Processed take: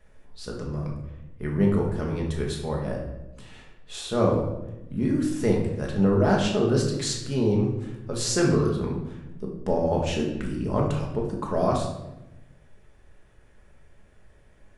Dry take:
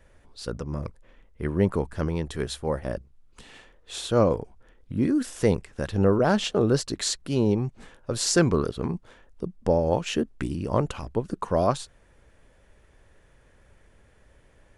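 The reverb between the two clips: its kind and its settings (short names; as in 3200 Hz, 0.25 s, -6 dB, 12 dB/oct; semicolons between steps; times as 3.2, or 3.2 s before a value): shoebox room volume 370 m³, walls mixed, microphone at 1.4 m; gain -4.5 dB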